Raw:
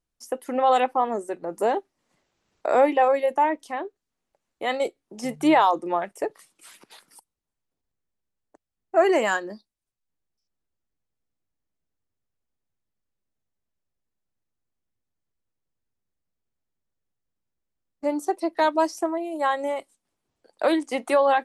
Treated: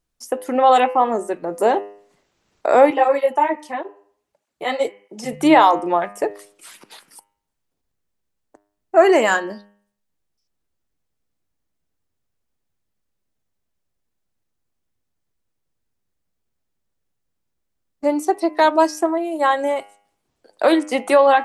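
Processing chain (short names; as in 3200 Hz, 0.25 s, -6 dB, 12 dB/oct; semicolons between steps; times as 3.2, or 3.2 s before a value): de-hum 101.9 Hz, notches 31; 2.9–5.33 tape flanging out of phase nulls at 1.6 Hz, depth 7.4 ms; gain +6.5 dB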